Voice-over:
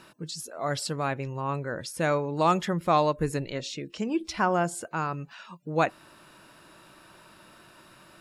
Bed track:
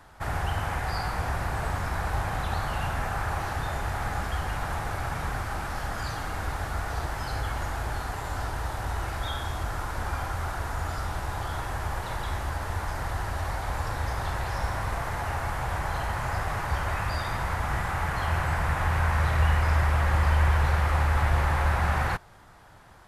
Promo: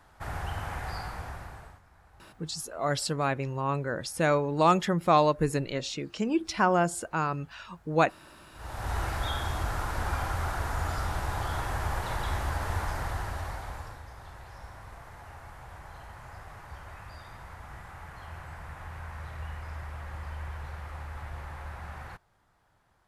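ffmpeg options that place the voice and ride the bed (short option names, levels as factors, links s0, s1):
-filter_complex "[0:a]adelay=2200,volume=1.12[s0];[1:a]volume=15,afade=t=out:st=0.9:d=0.91:silence=0.0668344,afade=t=in:st=8.53:d=0.43:silence=0.0334965,afade=t=out:st=12.77:d=1.26:silence=0.149624[s1];[s0][s1]amix=inputs=2:normalize=0"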